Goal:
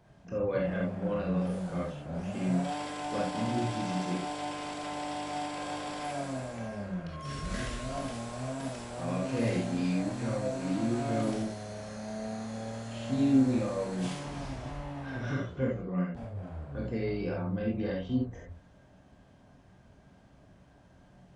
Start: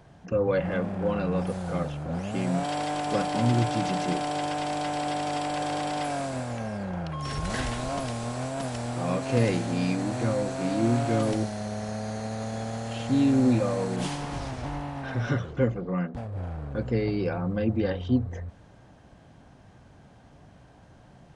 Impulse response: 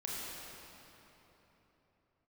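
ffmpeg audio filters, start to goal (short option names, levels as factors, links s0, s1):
-filter_complex "[0:a]asettb=1/sr,asplit=3[s0][s1][s2];[s0]atrim=end=6.864[s3];[s1]atrim=start=6.86:end=7.93,asetpts=PTS-STARTPTS,afade=t=in:d=0.004:c=qsin,afade=t=out:st=1.066:d=0.004:c=qsin,equalizer=f=820:w=5.7:g=-13[s4];[s2]atrim=start=7.926[s5];[s3][s4]acrossfade=d=0.004:c1=hsin:c2=qsin[s6];[s6][s5]acrossfade=d=0.004:c1=qsin:c2=hsin[s7];[1:a]atrim=start_sample=2205,atrim=end_sample=6174,asetrate=66150,aresample=44100[s8];[s7][s8]afir=irnorm=-1:irlink=0,volume=0.841"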